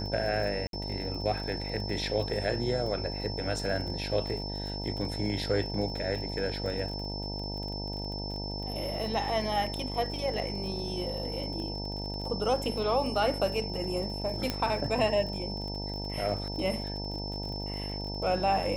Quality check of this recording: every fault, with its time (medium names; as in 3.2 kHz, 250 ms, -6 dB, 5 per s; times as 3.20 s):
buzz 50 Hz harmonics 19 -37 dBFS
crackle 40 per s -37 dBFS
whine 5.3 kHz -38 dBFS
0.67–0.73 s: dropout 62 ms
14.50 s: pop -14 dBFS